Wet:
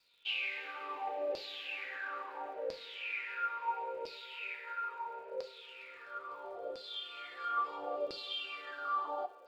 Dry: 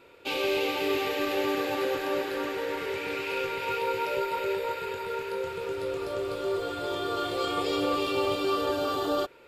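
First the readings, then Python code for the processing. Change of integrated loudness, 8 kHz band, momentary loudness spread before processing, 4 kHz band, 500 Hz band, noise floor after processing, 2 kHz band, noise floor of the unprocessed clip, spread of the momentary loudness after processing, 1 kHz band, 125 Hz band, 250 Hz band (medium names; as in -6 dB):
-10.0 dB, under -20 dB, 5 LU, -8.0 dB, -15.0 dB, -54 dBFS, -6.5 dB, -39 dBFS, 9 LU, -7.0 dB, under -25 dB, -25.0 dB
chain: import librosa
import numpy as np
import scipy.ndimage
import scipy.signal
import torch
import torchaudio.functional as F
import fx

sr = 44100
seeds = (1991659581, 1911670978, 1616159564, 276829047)

y = fx.filter_lfo_bandpass(x, sr, shape='saw_down', hz=0.74, low_hz=520.0, high_hz=4800.0, q=7.8)
y = fx.rev_double_slope(y, sr, seeds[0], early_s=0.34, late_s=2.5, knee_db=-19, drr_db=6.5)
y = fx.dmg_crackle(y, sr, seeds[1], per_s=170.0, level_db=-65.0)
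y = y * 10.0 ** (2.0 / 20.0)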